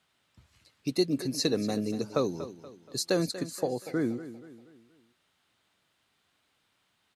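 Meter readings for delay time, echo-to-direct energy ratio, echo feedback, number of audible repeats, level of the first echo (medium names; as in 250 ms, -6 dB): 238 ms, -13.0 dB, 43%, 3, -14.0 dB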